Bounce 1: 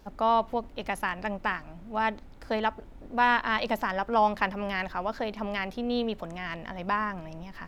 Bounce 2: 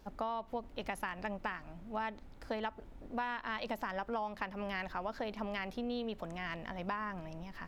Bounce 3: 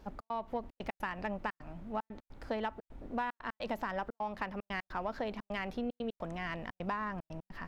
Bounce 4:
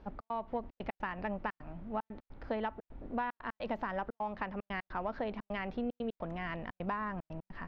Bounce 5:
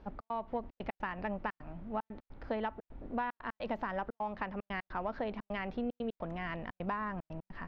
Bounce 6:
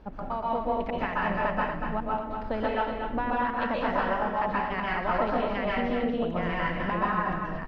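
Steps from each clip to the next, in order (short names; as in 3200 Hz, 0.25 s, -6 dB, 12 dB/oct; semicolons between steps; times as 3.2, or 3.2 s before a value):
compressor 12:1, threshold -29 dBFS, peak gain reduction 12 dB; gain -4.5 dB
high shelf 3500 Hz -7 dB; in parallel at -9.5 dB: soft clip -38.5 dBFS, distortion -9 dB; on the sum: step gate "xx.xxxx.x.xxx" 150 bpm -60 dB; gain +1 dB
air absorption 230 m; gain +1 dB
nothing audible
on a send: echo 0.237 s -6 dB; on the sum: plate-style reverb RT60 0.59 s, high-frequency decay 0.95×, pre-delay 0.115 s, DRR -5.5 dB; gain +4 dB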